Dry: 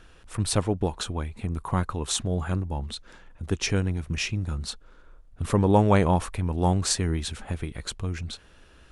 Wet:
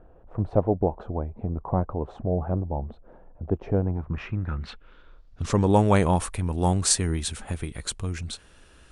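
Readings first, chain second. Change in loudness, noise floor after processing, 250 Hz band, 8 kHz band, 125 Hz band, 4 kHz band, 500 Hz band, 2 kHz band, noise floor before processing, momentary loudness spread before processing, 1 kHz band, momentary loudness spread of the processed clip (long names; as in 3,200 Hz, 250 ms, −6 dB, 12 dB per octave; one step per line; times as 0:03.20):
+0.5 dB, −53 dBFS, +0.5 dB, +2.0 dB, 0.0 dB, −3.0 dB, +1.5 dB, −3.0 dB, −53 dBFS, 16 LU, +0.5 dB, 14 LU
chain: low-pass filter sweep 670 Hz → 9,500 Hz, 0:03.76–0:05.81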